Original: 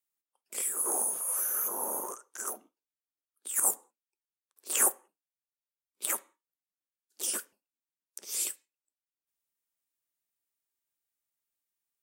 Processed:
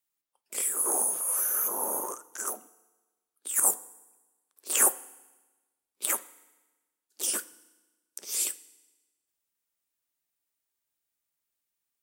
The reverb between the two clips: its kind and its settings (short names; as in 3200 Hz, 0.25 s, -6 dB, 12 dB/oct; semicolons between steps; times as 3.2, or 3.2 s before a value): FDN reverb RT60 1.2 s, low-frequency decay 1.1×, high-frequency decay 0.95×, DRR 17.5 dB; gain +3 dB